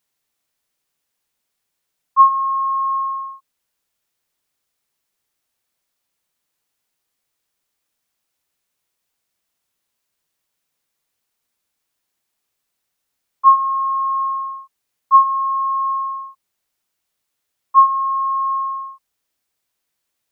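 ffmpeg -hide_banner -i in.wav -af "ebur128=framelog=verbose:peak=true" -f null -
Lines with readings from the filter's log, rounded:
Integrated loudness:
  I:         -17.2 LUFS
  Threshold: -28.1 LUFS
Loudness range:
  LRA:         6.9 LU
  Threshold: -40.6 LUFS
  LRA low:   -24.9 LUFS
  LRA high:  -18.0 LUFS
True peak:
  Peak:       -2.5 dBFS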